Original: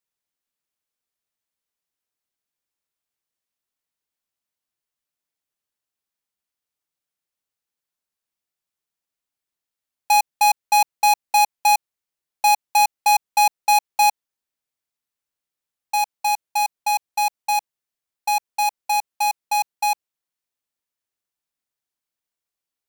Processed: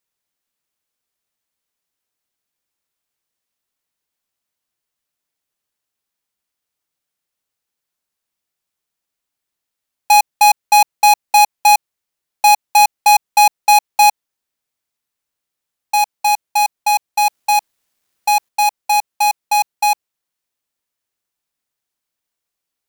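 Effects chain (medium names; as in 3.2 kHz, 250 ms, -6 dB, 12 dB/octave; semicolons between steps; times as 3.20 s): 17.25–18.49 s: companding laws mixed up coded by mu; trim +6 dB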